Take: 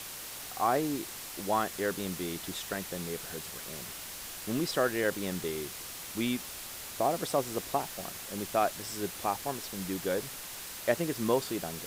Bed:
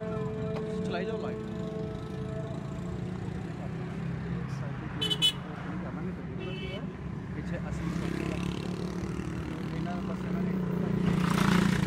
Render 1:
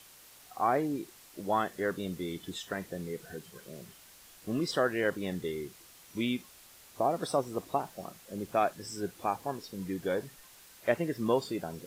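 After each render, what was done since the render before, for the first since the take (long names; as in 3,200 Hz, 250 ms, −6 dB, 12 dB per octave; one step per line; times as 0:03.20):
noise reduction from a noise print 13 dB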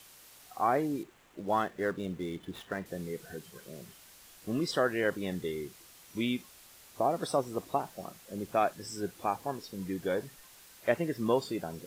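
0:01.03–0:02.86: running median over 9 samples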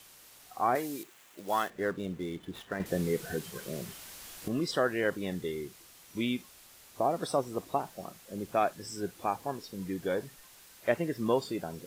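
0:00.75–0:01.70: spectral tilt +3 dB per octave
0:02.80–0:04.48: clip gain +8 dB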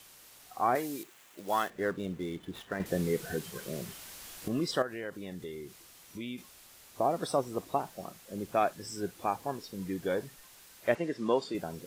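0:04.82–0:06.38: downward compressor 2 to 1, threshold −42 dBFS
0:10.95–0:11.55: band-pass filter 200–7,000 Hz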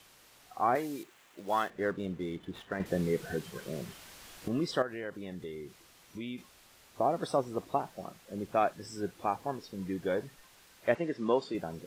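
high-shelf EQ 6,100 Hz −9.5 dB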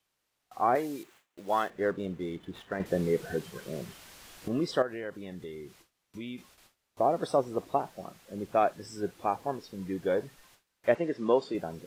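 noise gate with hold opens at −47 dBFS
dynamic equaliser 510 Hz, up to +4 dB, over −38 dBFS, Q 0.93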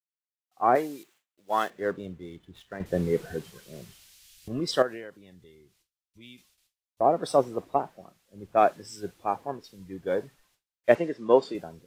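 multiband upward and downward expander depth 100%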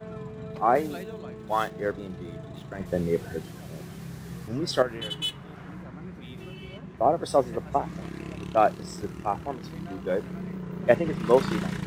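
mix in bed −5 dB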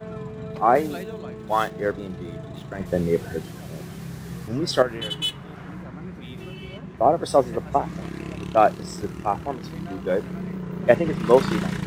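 level +4 dB
brickwall limiter −2 dBFS, peak gain reduction 1 dB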